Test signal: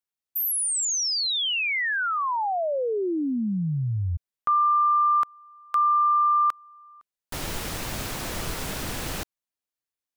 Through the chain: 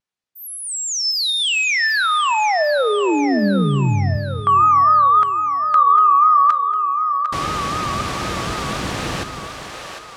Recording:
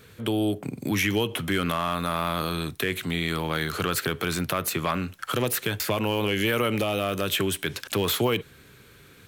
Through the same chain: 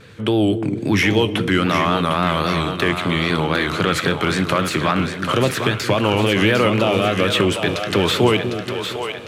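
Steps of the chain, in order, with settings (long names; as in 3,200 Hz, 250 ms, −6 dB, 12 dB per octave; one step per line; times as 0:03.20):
high-pass filter 66 Hz
pitch vibrato 3.7 Hz 100 cents
high-frequency loss of the air 72 metres
on a send: echo with a time of its own for lows and highs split 420 Hz, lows 235 ms, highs 753 ms, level −7 dB
on the sum: coupled-rooms reverb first 0.4 s, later 3.9 s, from −18 dB, DRR 14.5 dB
level +8 dB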